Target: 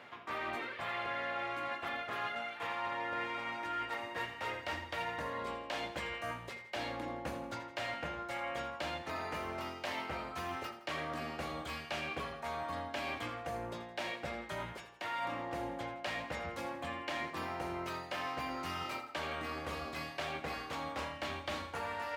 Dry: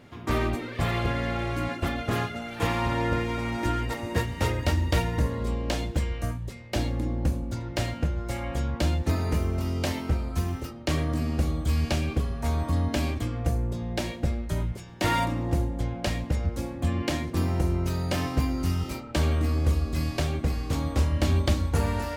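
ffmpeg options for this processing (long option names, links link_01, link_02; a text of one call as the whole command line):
ffmpeg -i in.wav -filter_complex "[0:a]highpass=130,acrossover=split=590 3600:gain=0.126 1 0.2[link_01][link_02][link_03];[link_01][link_02][link_03]amix=inputs=3:normalize=0,areverse,acompressor=threshold=-43dB:ratio=6,areverse,aecho=1:1:83|166|249|332|415:0.224|0.107|0.0516|0.0248|0.0119,volume=6dB" out.wav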